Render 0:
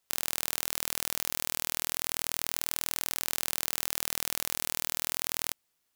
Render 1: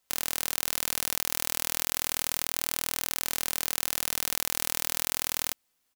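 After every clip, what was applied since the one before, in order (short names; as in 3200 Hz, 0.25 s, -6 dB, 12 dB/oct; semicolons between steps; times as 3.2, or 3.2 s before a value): comb 3.9 ms, depth 31%; gain +2 dB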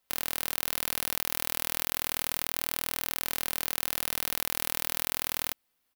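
bell 7000 Hz -7 dB 0.95 oct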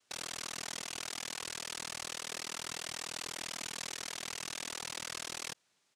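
noise vocoder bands 1; gain -4.5 dB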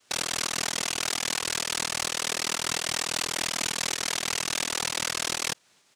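in parallel at -2 dB: pump 129 bpm, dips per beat 2, -11 dB, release 0.18 s; on the sum: hard clip -26 dBFS, distortion -22 dB; gain +8 dB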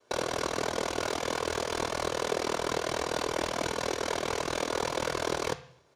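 reverb RT60 0.60 s, pre-delay 3 ms, DRR 13.5 dB; gain -7.5 dB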